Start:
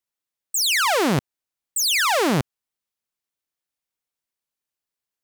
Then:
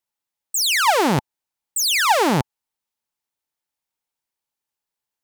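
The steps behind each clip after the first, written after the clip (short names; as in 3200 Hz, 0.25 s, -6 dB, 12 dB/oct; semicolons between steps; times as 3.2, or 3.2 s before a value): bell 870 Hz +9 dB 0.24 oct; gain +1 dB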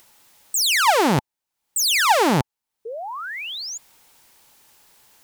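upward compressor, threshold -30 dBFS; painted sound rise, 2.85–3.78, 430–7200 Hz -31 dBFS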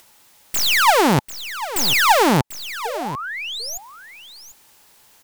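tracing distortion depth 0.14 ms; echo 0.743 s -13.5 dB; gain +2.5 dB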